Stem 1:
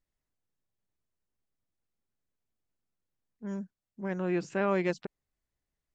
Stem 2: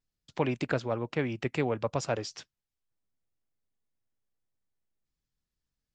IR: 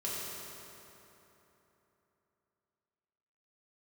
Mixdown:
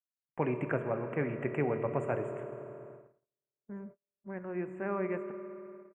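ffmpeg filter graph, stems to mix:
-filter_complex "[0:a]adelay=250,volume=0.376,asplit=2[s0][s1];[s1]volume=0.299[s2];[1:a]highpass=95,volume=0.562,asplit=2[s3][s4];[s4]volume=0.422[s5];[2:a]atrim=start_sample=2205[s6];[s2][s5]amix=inputs=2:normalize=0[s7];[s7][s6]afir=irnorm=-1:irlink=0[s8];[s0][s3][s8]amix=inputs=3:normalize=0,agate=range=0.01:threshold=0.00355:ratio=16:detection=peak,asuperstop=centerf=4800:order=8:qfactor=0.72"

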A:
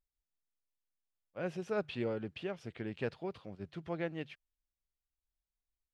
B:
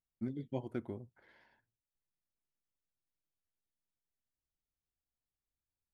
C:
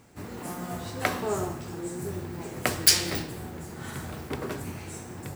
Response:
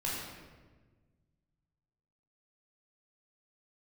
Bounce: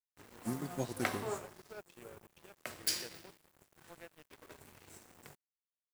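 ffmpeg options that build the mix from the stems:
-filter_complex "[0:a]bass=f=250:g=-11,treble=f=4000:g=2,volume=0.299,asplit=2[s0][s1];[1:a]aexciter=amount=15.6:drive=8.8:freq=5000,adelay=250,volume=1.26[s2];[2:a]lowshelf=f=250:g=-9,flanger=delay=1.3:depth=6.8:regen=-64:speed=0.43:shape=triangular,volume=0.668,asplit=2[s3][s4];[s4]volume=0.158[s5];[s1]apad=whole_len=236280[s6];[s3][s6]sidechaincompress=threshold=0.00126:ratio=12:attack=34:release=804[s7];[3:a]atrim=start_sample=2205[s8];[s5][s8]afir=irnorm=-1:irlink=0[s9];[s0][s2][s7][s9]amix=inputs=4:normalize=0,aeval=exprs='sgn(val(0))*max(abs(val(0))-0.00335,0)':c=same"

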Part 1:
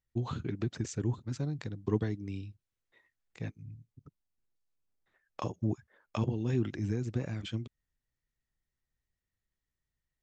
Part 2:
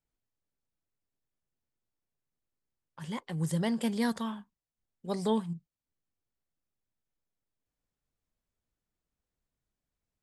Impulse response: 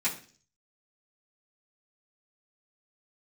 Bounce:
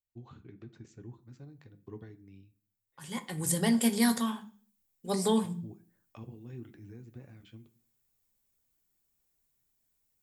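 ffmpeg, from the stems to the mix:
-filter_complex "[0:a]lowpass=f=3300:p=1,volume=0.15,asplit=2[s0][s1];[s1]volume=0.251[s2];[1:a]aemphasis=mode=production:type=50fm,afade=t=in:st=0.84:d=0.53:silence=0.316228,afade=t=in:st=2.86:d=0.53:silence=0.316228,asplit=2[s3][s4];[s4]volume=0.335[s5];[2:a]atrim=start_sample=2205[s6];[s2][s5]amix=inputs=2:normalize=0[s7];[s7][s6]afir=irnorm=-1:irlink=0[s8];[s0][s3][s8]amix=inputs=3:normalize=0"

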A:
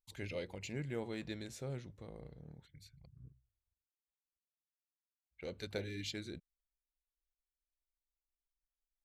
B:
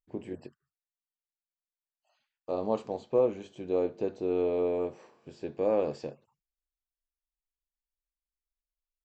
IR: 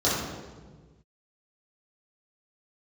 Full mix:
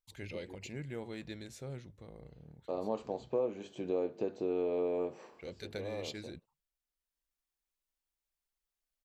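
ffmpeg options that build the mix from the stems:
-filter_complex "[0:a]volume=0.891,asplit=2[s0][s1];[1:a]highpass=120,adelay=200,volume=1.26[s2];[s1]apad=whole_len=407598[s3];[s2][s3]sidechaincompress=threshold=0.00224:ratio=12:attack=33:release=1170[s4];[s0][s4]amix=inputs=2:normalize=0,acompressor=threshold=0.0178:ratio=2"

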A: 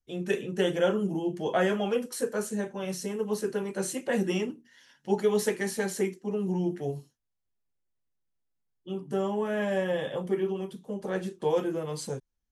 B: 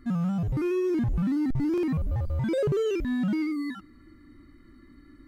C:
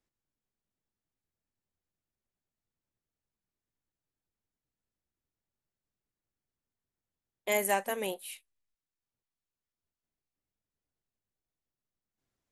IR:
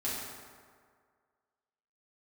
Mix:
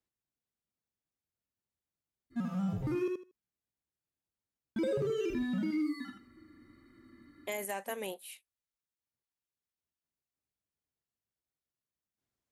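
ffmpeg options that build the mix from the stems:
-filter_complex "[1:a]highpass=f=160:p=1,adynamicequalizer=threshold=0.00708:dfrequency=1200:dqfactor=0.82:tfrequency=1200:tqfactor=0.82:attack=5:release=100:ratio=0.375:range=2:mode=cutabove:tftype=bell,flanger=delay=8.2:depth=1.3:regen=-49:speed=1.3:shape=triangular,adelay=2300,volume=0.944,asplit=3[s0][s1][s2];[s0]atrim=end=3.08,asetpts=PTS-STARTPTS,afade=t=out:st=3.076:d=0.004:c=hsin[s3];[s1]atrim=start=3.08:end=4.76,asetpts=PTS-STARTPTS,volume=0[s4];[s2]atrim=start=4.76,asetpts=PTS-STARTPTS,afade=t=in:d=0.004:c=hsin[s5];[s3][s4][s5]concat=n=3:v=0:a=1,asplit=2[s6][s7];[s7]volume=0.562[s8];[2:a]highpass=46,volume=0.596[s9];[s8]aecho=0:1:78|156|234:1|0.18|0.0324[s10];[s6][s9][s10]amix=inputs=3:normalize=0,alimiter=level_in=1.26:limit=0.0631:level=0:latency=1:release=73,volume=0.794"

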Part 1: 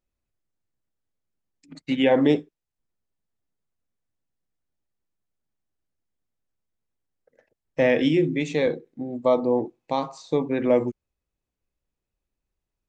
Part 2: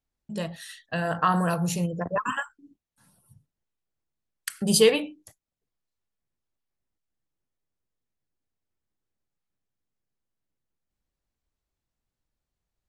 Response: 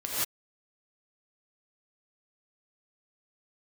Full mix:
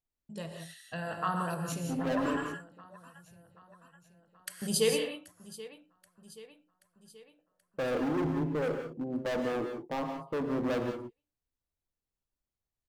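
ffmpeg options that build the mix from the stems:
-filter_complex "[0:a]agate=range=0.282:threshold=0.00316:ratio=16:detection=peak,lowpass=f=1200:w=0.5412,lowpass=f=1200:w=1.3066,asoftclip=type=hard:threshold=0.0501,volume=0.531,asplit=2[s0][s1];[s1]volume=0.266[s2];[1:a]volume=0.251,asplit=4[s3][s4][s5][s6];[s4]volume=0.355[s7];[s5]volume=0.178[s8];[s6]apad=whole_len=568314[s9];[s0][s9]sidechaincompress=threshold=0.00562:ratio=8:attack=25:release=111[s10];[2:a]atrim=start_sample=2205[s11];[s2][s7]amix=inputs=2:normalize=0[s12];[s12][s11]afir=irnorm=-1:irlink=0[s13];[s8]aecho=0:1:780|1560|2340|3120|3900|4680|5460|6240:1|0.56|0.314|0.176|0.0983|0.0551|0.0308|0.0173[s14];[s10][s3][s13][s14]amix=inputs=4:normalize=0,highshelf=f=10000:g=4"

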